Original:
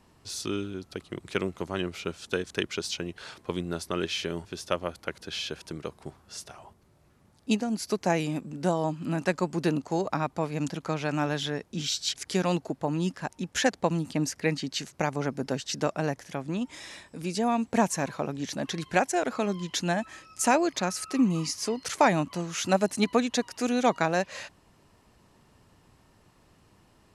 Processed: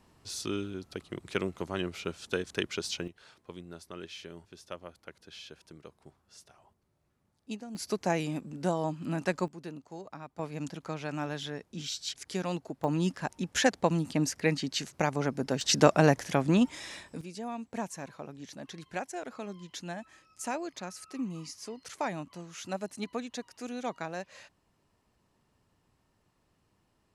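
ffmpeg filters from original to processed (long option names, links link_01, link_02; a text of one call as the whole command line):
ffmpeg -i in.wav -af "asetnsamples=nb_out_samples=441:pad=0,asendcmd='3.08 volume volume -13.5dB;7.75 volume volume -3.5dB;9.48 volume volume -16dB;10.39 volume volume -7dB;12.84 volume volume -0.5dB;15.61 volume volume 7dB;16.69 volume volume 0.5dB;17.21 volume volume -12dB',volume=-2.5dB" out.wav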